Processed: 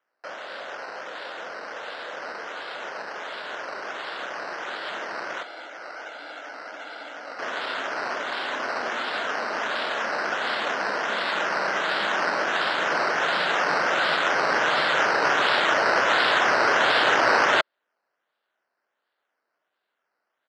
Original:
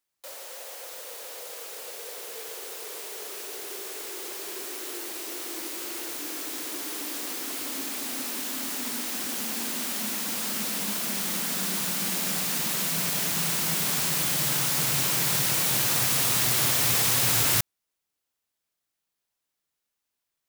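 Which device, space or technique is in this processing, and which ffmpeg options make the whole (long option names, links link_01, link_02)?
circuit-bent sampling toy: -filter_complex "[0:a]aecho=1:1:1.4:0.77,asplit=3[link_01][link_02][link_03];[link_01]afade=type=out:start_time=5.42:duration=0.02[link_04];[link_02]lowpass=frequency=2800:width=0.5412,lowpass=frequency=2800:width=1.3066,afade=type=in:start_time=5.42:duration=0.02,afade=type=out:start_time=7.38:duration=0.02[link_05];[link_03]afade=type=in:start_time=7.38:duration=0.02[link_06];[link_04][link_05][link_06]amix=inputs=3:normalize=0,acrusher=samples=10:mix=1:aa=0.000001:lfo=1:lforange=6:lforate=1.4,highpass=420,equalizer=frequency=610:width_type=q:width=4:gain=4,equalizer=frequency=1500:width_type=q:width=4:gain=6,equalizer=frequency=2400:width_type=q:width=4:gain=-5,lowpass=frequency=5000:width=0.5412,lowpass=frequency=5000:width=1.3066,volume=1.5dB"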